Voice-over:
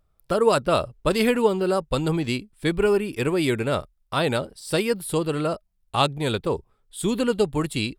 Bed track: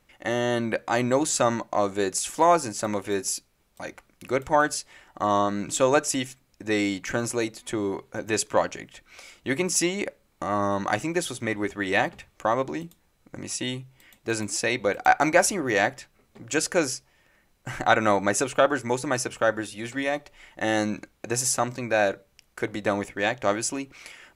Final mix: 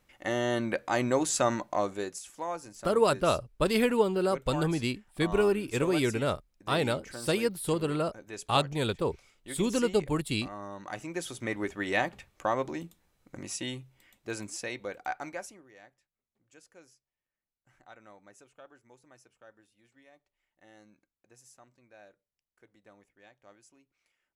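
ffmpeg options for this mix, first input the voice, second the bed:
-filter_complex "[0:a]adelay=2550,volume=-5dB[a];[1:a]volume=7.5dB,afade=t=out:st=1.72:d=0.51:silence=0.237137,afade=t=in:st=10.83:d=0.71:silence=0.266073,afade=t=out:st=13.38:d=2.31:silence=0.0421697[b];[a][b]amix=inputs=2:normalize=0"

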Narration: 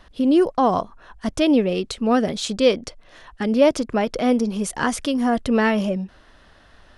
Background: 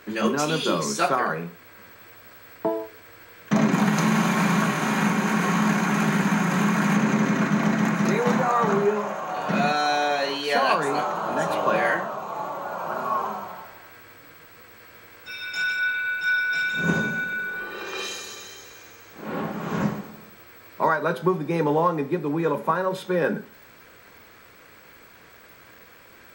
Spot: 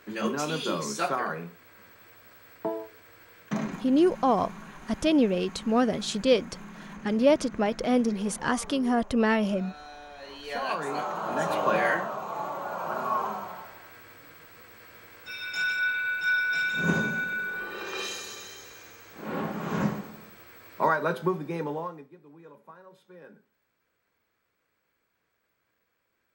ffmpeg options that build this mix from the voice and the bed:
-filter_complex "[0:a]adelay=3650,volume=-5dB[a];[1:a]volume=14.5dB,afade=t=out:st=3.39:d=0.45:silence=0.141254,afade=t=in:st=10.14:d=1.4:silence=0.0944061,afade=t=out:st=20.99:d=1.1:silence=0.0630957[b];[a][b]amix=inputs=2:normalize=0"

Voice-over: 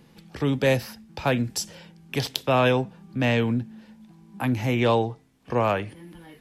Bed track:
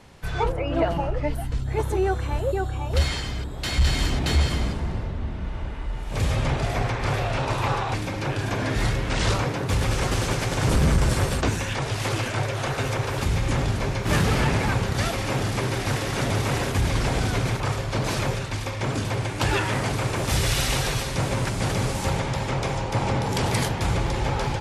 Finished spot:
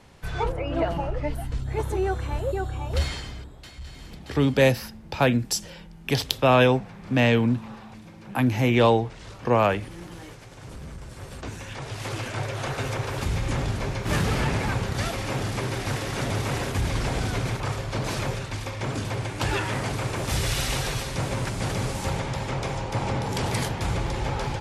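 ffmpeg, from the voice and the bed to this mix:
-filter_complex "[0:a]adelay=3950,volume=2.5dB[a];[1:a]volume=14.5dB,afade=t=out:st=2.91:d=0.82:silence=0.133352,afade=t=in:st=11.12:d=1.5:silence=0.141254[b];[a][b]amix=inputs=2:normalize=0"

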